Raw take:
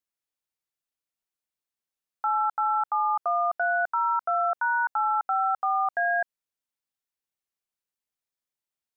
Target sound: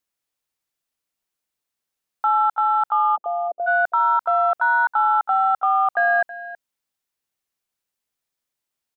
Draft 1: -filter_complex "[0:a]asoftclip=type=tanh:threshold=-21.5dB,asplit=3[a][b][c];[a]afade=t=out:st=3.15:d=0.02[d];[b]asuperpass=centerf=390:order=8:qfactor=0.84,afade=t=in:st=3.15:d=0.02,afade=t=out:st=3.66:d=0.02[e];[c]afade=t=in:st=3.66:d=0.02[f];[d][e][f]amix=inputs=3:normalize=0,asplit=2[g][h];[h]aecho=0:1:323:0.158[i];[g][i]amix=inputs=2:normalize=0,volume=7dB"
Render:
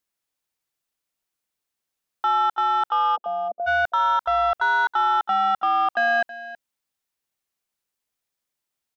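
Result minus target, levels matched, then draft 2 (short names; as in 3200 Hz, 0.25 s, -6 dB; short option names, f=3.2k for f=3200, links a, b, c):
soft clip: distortion +18 dB
-filter_complex "[0:a]asoftclip=type=tanh:threshold=-11dB,asplit=3[a][b][c];[a]afade=t=out:st=3.15:d=0.02[d];[b]asuperpass=centerf=390:order=8:qfactor=0.84,afade=t=in:st=3.15:d=0.02,afade=t=out:st=3.66:d=0.02[e];[c]afade=t=in:st=3.66:d=0.02[f];[d][e][f]amix=inputs=3:normalize=0,asplit=2[g][h];[h]aecho=0:1:323:0.158[i];[g][i]amix=inputs=2:normalize=0,volume=7dB"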